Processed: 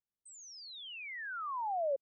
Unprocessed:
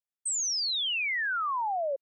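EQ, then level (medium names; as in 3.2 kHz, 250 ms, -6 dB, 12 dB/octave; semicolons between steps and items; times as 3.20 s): low-pass 2.3 kHz 6 dB/octave; tilt shelf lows +10 dB, about 690 Hz; -3.5 dB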